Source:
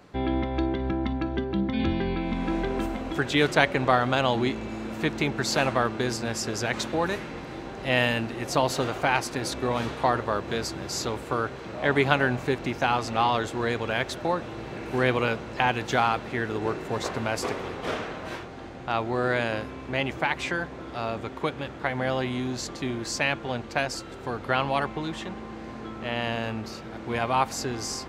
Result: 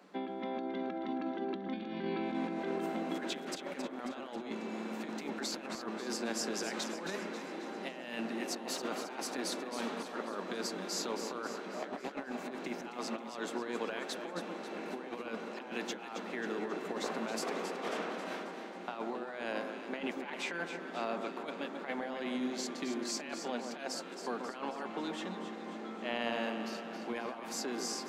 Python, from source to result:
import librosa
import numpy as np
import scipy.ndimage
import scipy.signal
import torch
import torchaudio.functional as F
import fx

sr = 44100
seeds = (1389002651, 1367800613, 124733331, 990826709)

y = scipy.signal.sosfilt(scipy.signal.cheby1(6, 1.0, 180.0, 'highpass', fs=sr, output='sos'), x)
y = fx.over_compress(y, sr, threshold_db=-30.0, ratio=-0.5)
y = fx.echo_alternate(y, sr, ms=135, hz=1500.0, feedback_pct=73, wet_db=-6.0)
y = F.gain(torch.from_numpy(y), -8.5).numpy()